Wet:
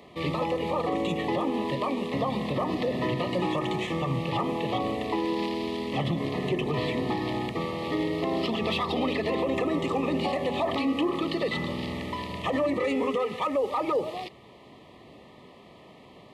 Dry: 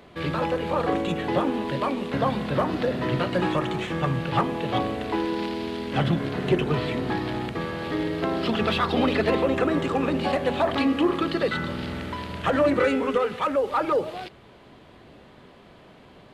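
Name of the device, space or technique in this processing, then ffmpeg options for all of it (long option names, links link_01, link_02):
PA system with an anti-feedback notch: -af "highpass=frequency=110:poles=1,asuperstop=centerf=1500:order=20:qfactor=3.4,alimiter=limit=-18.5dB:level=0:latency=1:release=77"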